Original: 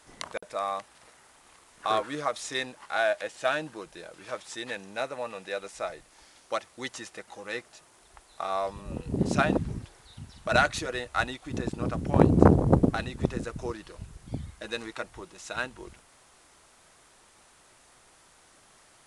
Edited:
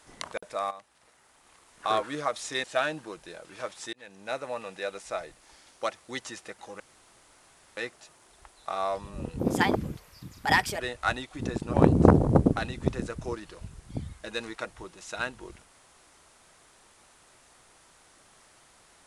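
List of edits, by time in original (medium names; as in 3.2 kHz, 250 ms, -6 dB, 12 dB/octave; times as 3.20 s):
0.71–1.88 s: fade in, from -13 dB
2.64–3.33 s: delete
4.62–5.08 s: fade in
7.49 s: insert room tone 0.97 s
9.11–10.91 s: speed 128%
11.85–12.11 s: delete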